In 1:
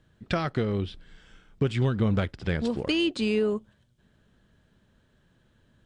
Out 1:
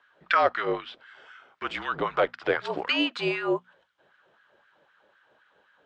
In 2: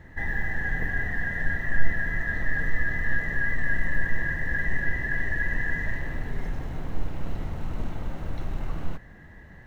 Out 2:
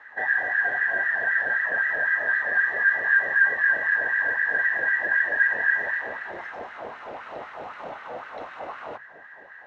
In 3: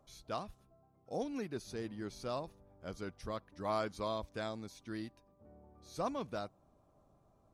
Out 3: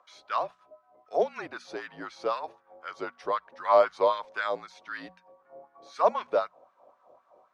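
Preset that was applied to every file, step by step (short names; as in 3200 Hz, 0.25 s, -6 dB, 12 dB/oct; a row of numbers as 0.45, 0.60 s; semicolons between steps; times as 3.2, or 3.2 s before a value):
high shelf 4500 Hz -11.5 dB; LFO high-pass sine 3.9 Hz 580–1600 Hz; frequency shift -49 Hz; air absorption 75 m; notches 60/120/180/240 Hz; normalise peaks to -9 dBFS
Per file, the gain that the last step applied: +7.0, +6.0, +11.5 dB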